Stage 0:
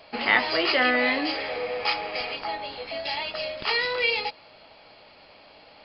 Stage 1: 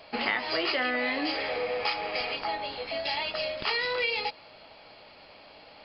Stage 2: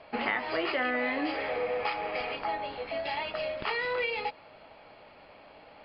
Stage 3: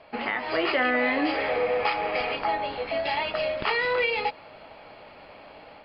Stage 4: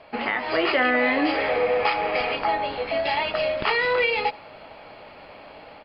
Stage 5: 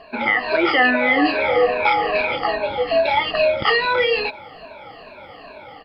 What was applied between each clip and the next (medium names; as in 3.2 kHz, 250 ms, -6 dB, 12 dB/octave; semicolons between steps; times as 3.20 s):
compression 6:1, threshold -25 dBFS, peak gain reduction 10 dB
low-pass 2.3 kHz 12 dB/octave
level rider gain up to 6 dB
delay 79 ms -23 dB; trim +3 dB
drifting ripple filter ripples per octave 1.5, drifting -2.4 Hz, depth 21 dB